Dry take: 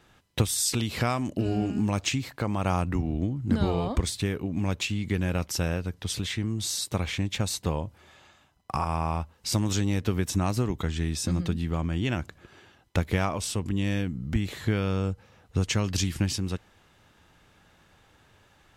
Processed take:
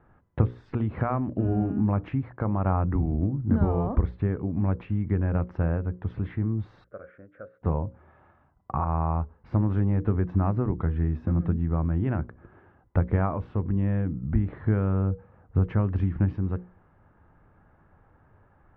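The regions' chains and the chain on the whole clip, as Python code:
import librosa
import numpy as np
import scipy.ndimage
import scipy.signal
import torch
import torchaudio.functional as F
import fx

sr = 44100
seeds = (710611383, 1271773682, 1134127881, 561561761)

y = fx.chain(x, sr, fx.double_bandpass(hz=890.0, octaves=1.4),
    fx.air_absorb(metres=180.0), at=(6.84, 7.62))
y = scipy.signal.sosfilt(scipy.signal.butter(4, 1500.0, 'lowpass', fs=sr, output='sos'), y)
y = fx.low_shelf(y, sr, hz=150.0, db=6.0)
y = fx.hum_notches(y, sr, base_hz=60, count=9)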